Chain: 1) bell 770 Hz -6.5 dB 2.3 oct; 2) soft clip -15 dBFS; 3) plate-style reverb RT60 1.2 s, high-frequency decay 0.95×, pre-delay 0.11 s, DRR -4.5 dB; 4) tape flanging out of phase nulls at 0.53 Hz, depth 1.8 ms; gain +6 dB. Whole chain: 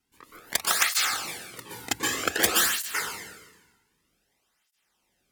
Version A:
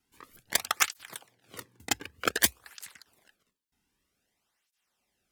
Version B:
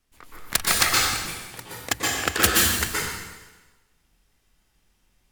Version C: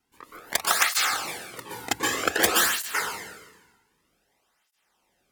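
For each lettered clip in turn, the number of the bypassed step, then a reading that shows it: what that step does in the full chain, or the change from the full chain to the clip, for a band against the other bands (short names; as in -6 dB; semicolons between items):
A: 3, momentary loudness spread change +3 LU; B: 4, 125 Hz band +10.0 dB; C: 1, loudness change +1.0 LU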